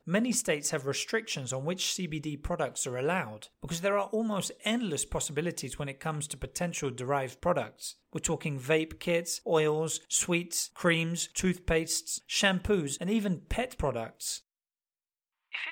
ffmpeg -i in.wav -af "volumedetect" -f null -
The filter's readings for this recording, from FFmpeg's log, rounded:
mean_volume: -31.8 dB
max_volume: -10.5 dB